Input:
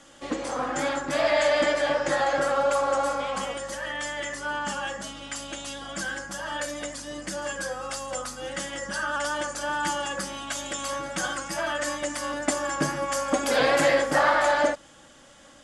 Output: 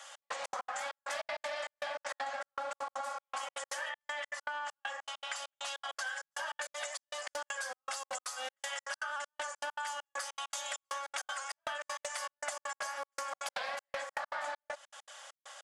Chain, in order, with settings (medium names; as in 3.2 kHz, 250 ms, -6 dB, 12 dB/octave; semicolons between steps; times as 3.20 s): steep high-pass 630 Hz 36 dB/octave; trance gate "xx..xx.x.x" 198 bpm -60 dB; 3.89–6.07 s: low-pass 3.9 kHz 6 dB/octave; compression 12:1, threshold -39 dBFS, peak gain reduction 20 dB; loudspeaker Doppler distortion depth 0.17 ms; trim +3.5 dB